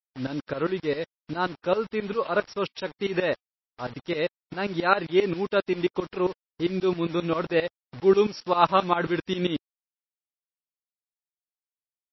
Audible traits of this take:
tremolo saw up 7.5 Hz, depth 90%
a quantiser's noise floor 8 bits, dither none
MP3

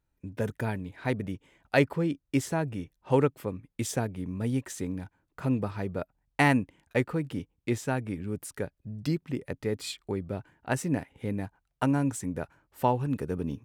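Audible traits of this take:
background noise floor −79 dBFS
spectral slope −5.0 dB per octave

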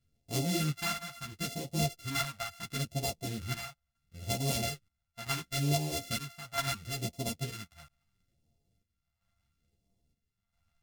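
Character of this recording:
a buzz of ramps at a fixed pitch in blocks of 64 samples
phaser sweep stages 2, 0.73 Hz, lowest notch 370–1,400 Hz
chopped level 0.76 Hz, depth 60%, duty 70%
a shimmering, thickened sound

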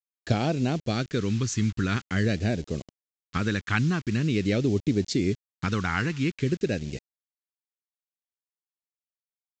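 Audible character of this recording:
a quantiser's noise floor 8 bits, dither none
phaser sweep stages 2, 0.46 Hz, lowest notch 580–1,200 Hz
mu-law

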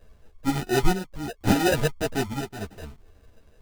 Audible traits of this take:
chopped level 0.71 Hz, depth 60%, duty 65%
aliases and images of a low sample rate 1,100 Hz, jitter 0%
a shimmering, thickened sound

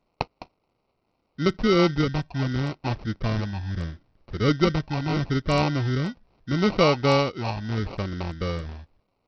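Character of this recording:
a quantiser's noise floor 12 bits, dither triangular
phaser sweep stages 12, 0.76 Hz, lowest notch 440–3,600 Hz
aliases and images of a low sample rate 1,700 Hz, jitter 0%
SBC

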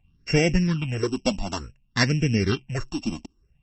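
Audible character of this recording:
a buzz of ramps at a fixed pitch in blocks of 16 samples
phaser sweep stages 6, 0.56 Hz, lowest notch 110–1,100 Hz
MP3

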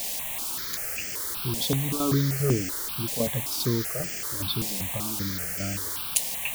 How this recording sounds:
tremolo saw down 2.5 Hz, depth 70%
a quantiser's noise floor 6 bits, dither triangular
notches that jump at a steady rate 5.2 Hz 360–3,800 Hz

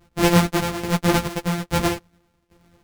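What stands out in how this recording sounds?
a buzz of ramps at a fixed pitch in blocks of 256 samples
tremolo saw down 1.2 Hz, depth 85%
a shimmering, thickened sound

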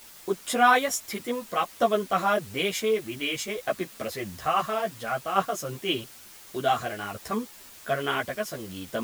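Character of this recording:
tremolo saw down 0.56 Hz, depth 50%
a quantiser's noise floor 8 bits, dither triangular
a shimmering, thickened sound

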